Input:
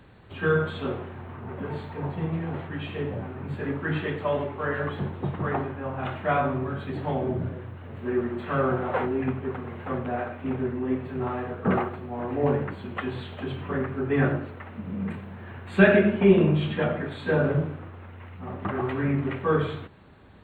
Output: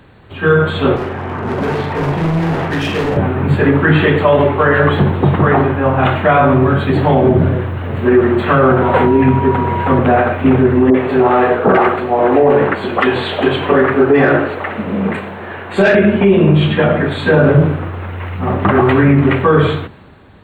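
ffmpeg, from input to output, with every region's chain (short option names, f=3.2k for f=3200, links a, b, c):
-filter_complex "[0:a]asettb=1/sr,asplit=3[a][b][c];[a]atrim=end=0.964[d];[b]atrim=start=0.96:end=3.17,asetpts=PTS-STARTPTS,afade=t=in:d=0.004:c=qsin,afade=t=out:st=2.206:d=0.004:c=qsin,highpass=130,lowpass=3.5k,asoftclip=type=hard:threshold=-35.5dB,asplit=2[e][f];[f]adelay=43,volume=-6dB[g];[e][g]amix=inputs=2:normalize=0,atrim=end_sample=97461[h];[c]atrim=start=3.166[i];[d][h]acrossfade=d=0.004:c1=hsin:c2=qsin[j];[j][i]acrossfade=d=0.004:c1=qsin:c2=hsin,asettb=1/sr,asplit=3[k][l][m];[k]atrim=end=8.824[n];[l]atrim=start=8.82:end=9.99,asetpts=PTS-STARTPTS,afade=t=in:d=0.004:c=qsin,afade=t=out:st=1.166:d=0.004:c=qsin,acrossover=split=360|3000[o][p][q];[p]acompressor=threshold=-41dB:ratio=1.5:attack=3.2:release=140:knee=2.83:detection=peak[r];[o][r][q]amix=inputs=3:normalize=0,aeval=exprs='val(0)+0.0126*sin(2*PI*960*n/s)':c=same[s];[m]atrim=start=9.986[t];[n][s]acrossfade=d=0.004:c1=hsin:c2=qsin[u];[u][t]acrossfade=d=0.004:c1=qsin:c2=hsin,asettb=1/sr,asplit=3[v][w][x];[v]atrim=end=10.904[y];[w]atrim=start=10.9:end=15.95,asetpts=PTS-STARTPTS,afade=t=in:d=0.004:c=qsin,afade=t=out:st=5.046:d=0.004:c=qsin,bass=f=250:g=-6,treble=f=4k:g=9,asplit=2[z][aa];[aa]highpass=f=720:p=1,volume=15dB,asoftclip=type=tanh:threshold=-5.5dB[ab];[z][ab]amix=inputs=2:normalize=0,lowpass=f=1k:p=1,volume=-6dB,acrossover=split=1100[ac][ad];[ad]adelay=40[ae];[ac][ae]amix=inputs=2:normalize=0,atrim=end_sample=222705[af];[x]atrim=start=15.946[ag];[y][af]acrossfade=d=0.004:c1=hsin:c2=qsin[ah];[ah][ag]acrossfade=d=0.004:c1=qsin:c2=hsin,bandreject=f=60:t=h:w=6,bandreject=f=120:t=h:w=6,bandreject=f=180:t=h:w=6,bandreject=f=240:t=h:w=6,dynaudnorm=f=110:g=13:m=11.5dB,alimiter=level_in=10dB:limit=-1dB:release=50:level=0:latency=1,volume=-1dB"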